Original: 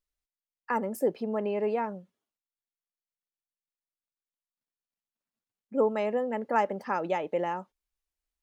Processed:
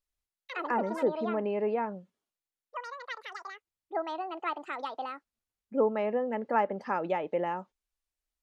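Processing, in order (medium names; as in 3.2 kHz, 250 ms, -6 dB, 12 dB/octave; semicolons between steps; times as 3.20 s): ever faster or slower copies 92 ms, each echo +7 st, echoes 2, each echo -6 dB; low-pass that closes with the level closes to 2.7 kHz, closed at -24 dBFS; trim -1 dB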